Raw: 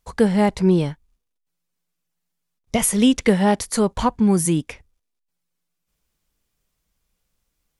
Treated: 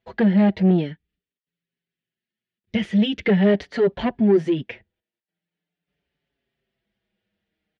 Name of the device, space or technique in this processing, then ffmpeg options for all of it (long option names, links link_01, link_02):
barber-pole flanger into a guitar amplifier: -filter_complex "[0:a]asettb=1/sr,asplit=3[link_01][link_02][link_03];[link_01]atrim=end=0.704[link_04];[link_02]atrim=start=0.7:end=3.25,asetpts=PTS-STARTPTS,afade=type=in:duration=0.004:curve=qsin,afade=type=out:start_time=2.546:duration=0.004:curve=qsin,equalizer=frequency=770:width=1.1:gain=-12.5[link_05];[link_03]atrim=start=3.246[link_06];[link_04][link_05]acrossfade=duration=0.004:curve1=hsin:curve2=qsin[link_07];[link_07][link_06]acrossfade=duration=0.004:curve1=qsin:curve2=hsin,asplit=2[link_08][link_09];[link_09]adelay=5.6,afreqshift=-0.44[link_10];[link_08][link_10]amix=inputs=2:normalize=1,asoftclip=type=tanh:threshold=-18.5dB,highpass=87,equalizer=frequency=200:width_type=q:width=4:gain=7,equalizer=frequency=380:width_type=q:width=4:gain=9,equalizer=frequency=650:width_type=q:width=4:gain=6,equalizer=frequency=1100:width_type=q:width=4:gain=-10,equalizer=frequency=1800:width_type=q:width=4:gain=8,equalizer=frequency=3000:width_type=q:width=4:gain=4,lowpass=frequency=3700:width=0.5412,lowpass=frequency=3700:width=1.3066,volume=1dB"